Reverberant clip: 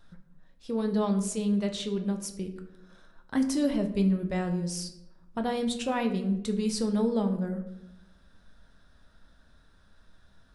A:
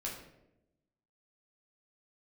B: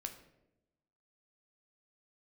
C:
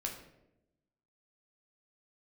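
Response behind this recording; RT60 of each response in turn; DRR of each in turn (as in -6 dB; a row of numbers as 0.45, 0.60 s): B; 0.90, 0.90, 0.90 s; -4.0, 5.0, 0.5 dB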